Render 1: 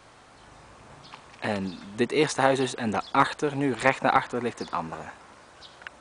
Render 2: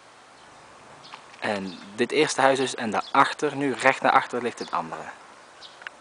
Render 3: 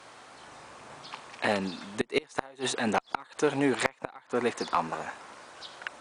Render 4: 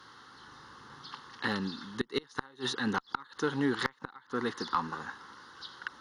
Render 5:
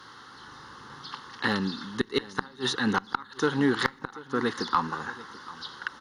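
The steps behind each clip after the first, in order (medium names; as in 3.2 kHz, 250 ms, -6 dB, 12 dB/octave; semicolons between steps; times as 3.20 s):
high-pass 330 Hz 6 dB/octave; trim +3.5 dB
inverted gate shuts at -11 dBFS, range -30 dB; one-sided clip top -15.5 dBFS
static phaser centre 2.4 kHz, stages 6
delay 737 ms -19 dB; on a send at -24 dB: reverberation RT60 0.90 s, pre-delay 5 ms; on the sum: trim +5.5 dB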